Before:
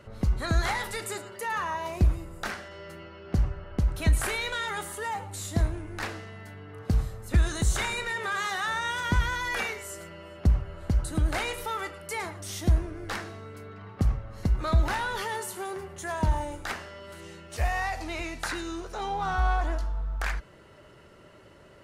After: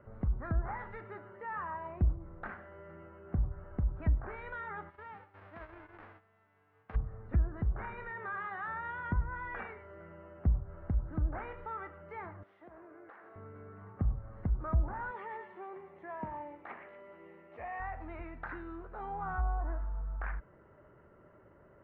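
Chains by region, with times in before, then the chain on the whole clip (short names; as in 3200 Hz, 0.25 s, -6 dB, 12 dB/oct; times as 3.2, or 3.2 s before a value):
4.89–6.94 spectral whitening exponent 0.1 + gate -39 dBFS, range -13 dB + compressor 3:1, threshold -34 dBFS
12.43–13.36 HPF 450 Hz + compressor, threshold -42 dBFS
15.11–17.8 speaker cabinet 250–9800 Hz, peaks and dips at 1500 Hz -10 dB, 2300 Hz +5 dB, 4800 Hz -4 dB + delay with a stepping band-pass 0.118 s, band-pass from 2200 Hz, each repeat 0.7 oct, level -5.5 dB
whole clip: inverse Chebyshev low-pass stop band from 8800 Hz, stop band 80 dB; treble ducked by the level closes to 840 Hz, closed at -20.5 dBFS; dynamic EQ 470 Hz, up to -4 dB, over -43 dBFS, Q 0.8; gain -6.5 dB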